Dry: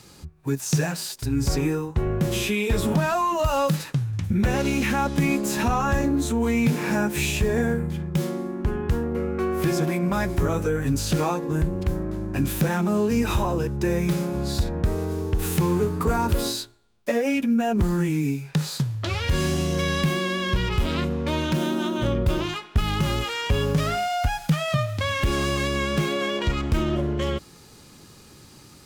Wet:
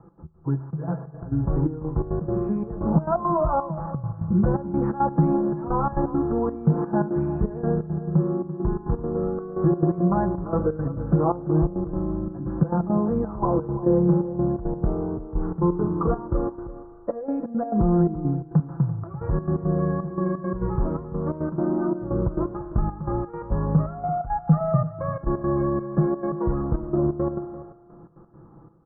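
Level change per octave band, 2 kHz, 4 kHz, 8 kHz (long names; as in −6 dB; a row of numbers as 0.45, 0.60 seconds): below −15 dB, below −40 dB, below −40 dB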